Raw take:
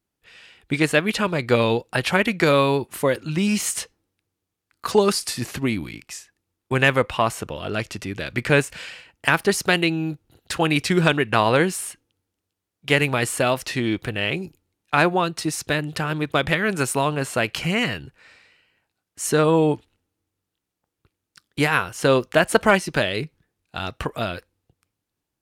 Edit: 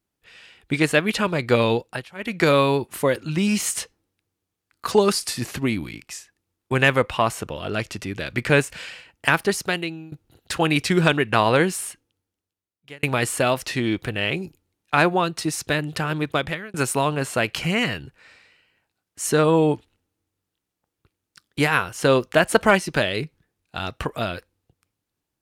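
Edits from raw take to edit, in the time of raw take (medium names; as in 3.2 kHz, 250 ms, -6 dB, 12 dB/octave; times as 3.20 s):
1.80–2.43 s: dip -24 dB, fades 0.28 s
9.31–10.12 s: fade out, to -19 dB
11.85–13.03 s: fade out linear
16.27–16.74 s: fade out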